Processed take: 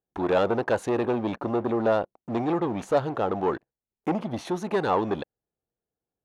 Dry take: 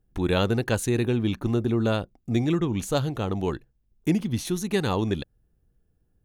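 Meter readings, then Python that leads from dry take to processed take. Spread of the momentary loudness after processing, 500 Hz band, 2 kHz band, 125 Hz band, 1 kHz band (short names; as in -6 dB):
7 LU, +3.0 dB, -1.0 dB, -9.5 dB, +6.5 dB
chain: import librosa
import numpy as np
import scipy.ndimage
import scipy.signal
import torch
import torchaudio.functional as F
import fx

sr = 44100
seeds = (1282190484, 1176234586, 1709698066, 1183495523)

y = fx.leveller(x, sr, passes=3)
y = fx.bandpass_q(y, sr, hz=770.0, q=1.3)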